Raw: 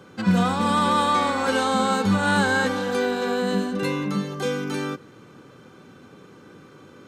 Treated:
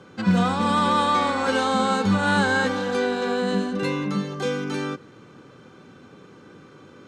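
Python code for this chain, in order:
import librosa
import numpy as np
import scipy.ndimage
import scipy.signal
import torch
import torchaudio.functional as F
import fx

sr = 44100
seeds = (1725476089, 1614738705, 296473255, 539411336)

y = scipy.signal.sosfilt(scipy.signal.butter(2, 7800.0, 'lowpass', fs=sr, output='sos'), x)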